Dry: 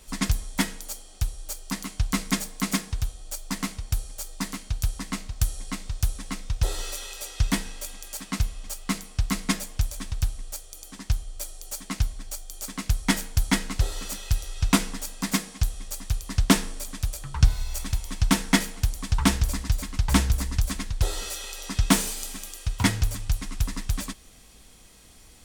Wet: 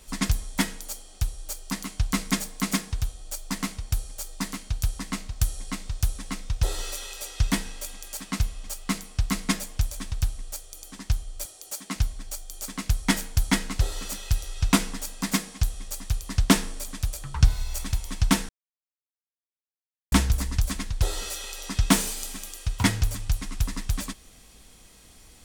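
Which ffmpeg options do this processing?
ffmpeg -i in.wav -filter_complex "[0:a]asettb=1/sr,asplit=3[link_01][link_02][link_03];[link_01]atrim=end=11.454[link_04];[link_02]atrim=start=11.45:end=11.96,asetpts=PTS-STARTPTS,afade=type=in:duration=0.004:curve=qsin,afade=type=out:start_time=0.506:duration=0.004:curve=qsin,highpass=140[link_05];[link_03]atrim=start=11.956[link_06];[link_04][link_05]acrossfade=duration=0.004:curve1=hsin:curve2=qsin[link_07];[link_07][link_06]acrossfade=duration=0.004:curve1=qsin:curve2=hsin,asplit=3[link_08][link_09][link_10];[link_08]atrim=end=18.49,asetpts=PTS-STARTPTS,afade=type=out:start_time=18.486:duration=0.004:curve=hsin[link_11];[link_09]atrim=start=18.49:end=20.12,asetpts=PTS-STARTPTS,volume=0[link_12];[link_10]atrim=start=20.12,asetpts=PTS-STARTPTS,afade=type=in:duration=0.004:curve=hsin[link_13];[link_11][link_12][link_13]concat=n=3:v=0:a=1" out.wav

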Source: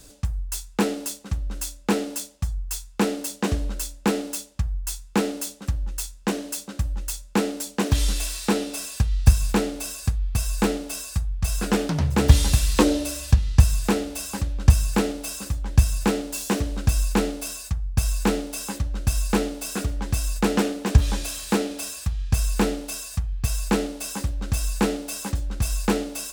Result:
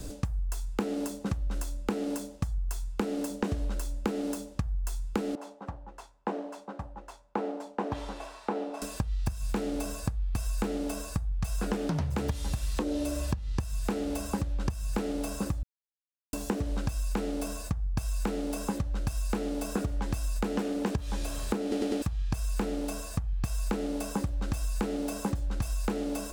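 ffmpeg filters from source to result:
ffmpeg -i in.wav -filter_complex "[0:a]asettb=1/sr,asplit=3[link_01][link_02][link_03];[link_01]atrim=end=5.354[link_04];[link_02]atrim=start=5.35:end=8.82,asetpts=PTS-STARTPTS,afade=type=in:duration=0.004:curve=qsin,afade=type=out:start_time=3.466:duration=0.004:curve=qsin,bandpass=frequency=880:width_type=q:width=2.3[link_05];[link_03]atrim=start=8.816[link_06];[link_04][link_05]acrossfade=duration=0.004:curve1=hsin:curve2=qsin[link_07];[link_07][link_06]acrossfade=duration=0.004:curve1=qsin:curve2=hsin,asplit=7[link_08][link_09][link_10][link_11][link_12][link_13][link_14];[link_08]atrim=end=15.63,asetpts=PTS-STARTPTS,afade=type=out:start_time=15.626:duration=0.004:curve=hsin[link_15];[link_09]atrim=start=15.63:end=16.33,asetpts=PTS-STARTPTS,volume=0[link_16];[link_10]atrim=start=16.33:end=21.722,asetpts=PTS-STARTPTS,afade=type=in:duration=0.004:curve=hsin[link_17];[link_11]atrim=start=21.618:end=21.722[link_18];[link_12]atrim=start=21.618:end=21.722[link_19];[link_13]atrim=start=21.618:end=21.722[link_20];[link_14]atrim=start=22.018[link_21];[link_15][link_16][link_17]concat=n=3:v=0:a=1[link_22];[link_22][link_18]acrossfade=duration=0.004:curve1=hsin:curve2=hsin[link_23];[link_23][link_19]acrossfade=duration=0.004:curve1=hsin:curve2=hsin[link_24];[link_24][link_20]acrossfade=duration=0.004:curve1=hsin:curve2=hsin[link_25];[link_25][link_21]acrossfade=duration=0.004:curve1=hsin:curve2=hsin,acompressor=threshold=-30dB:ratio=6,tiltshelf=frequency=860:gain=6,acrossover=split=610|1500[link_26][link_27][link_28];[link_26]acompressor=threshold=-36dB:ratio=4[link_29];[link_27]acompressor=threshold=-44dB:ratio=4[link_30];[link_28]acompressor=threshold=-49dB:ratio=4[link_31];[link_29][link_30][link_31]amix=inputs=3:normalize=0,volume=6.5dB" out.wav

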